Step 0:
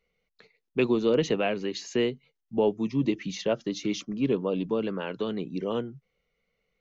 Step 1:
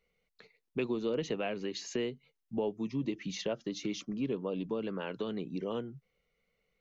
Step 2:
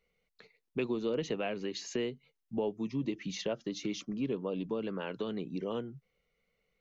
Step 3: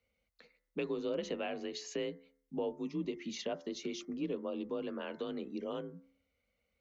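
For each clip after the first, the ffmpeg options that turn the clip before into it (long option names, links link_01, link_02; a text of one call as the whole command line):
ffmpeg -i in.wav -af "acompressor=threshold=-34dB:ratio=2,volume=-1.5dB" out.wav
ffmpeg -i in.wav -af anull out.wav
ffmpeg -i in.wav -af "bandreject=frequency=77.94:width_type=h:width=4,bandreject=frequency=155.88:width_type=h:width=4,bandreject=frequency=233.82:width_type=h:width=4,bandreject=frequency=311.76:width_type=h:width=4,bandreject=frequency=389.7:width_type=h:width=4,bandreject=frequency=467.64:width_type=h:width=4,bandreject=frequency=545.58:width_type=h:width=4,bandreject=frequency=623.52:width_type=h:width=4,bandreject=frequency=701.46:width_type=h:width=4,bandreject=frequency=779.4:width_type=h:width=4,bandreject=frequency=857.34:width_type=h:width=4,bandreject=frequency=935.28:width_type=h:width=4,bandreject=frequency=1013.22:width_type=h:width=4,bandreject=frequency=1091.16:width_type=h:width=4,bandreject=frequency=1169.1:width_type=h:width=4,bandreject=frequency=1247.04:width_type=h:width=4,bandreject=frequency=1324.98:width_type=h:width=4,bandreject=frequency=1402.92:width_type=h:width=4,bandreject=frequency=1480.86:width_type=h:width=4,bandreject=frequency=1558.8:width_type=h:width=4,bandreject=frequency=1636.74:width_type=h:width=4,bandreject=frequency=1714.68:width_type=h:width=4,bandreject=frequency=1792.62:width_type=h:width=4,bandreject=frequency=1870.56:width_type=h:width=4,bandreject=frequency=1948.5:width_type=h:width=4,bandreject=frequency=2026.44:width_type=h:width=4,bandreject=frequency=2104.38:width_type=h:width=4,afreqshift=38,volume=-3dB" out.wav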